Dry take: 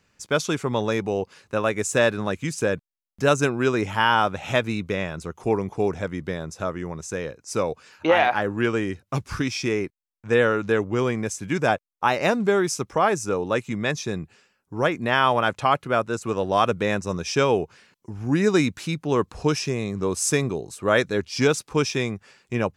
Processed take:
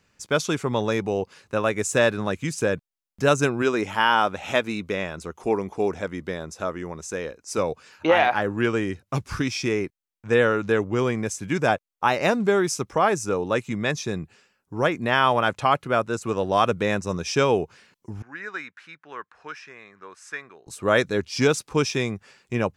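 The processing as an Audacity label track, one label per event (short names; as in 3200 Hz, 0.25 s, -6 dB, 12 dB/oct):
3.620000	7.580000	bell 120 Hz -11.5 dB
18.220000	20.670000	band-pass 1600 Hz, Q 3.2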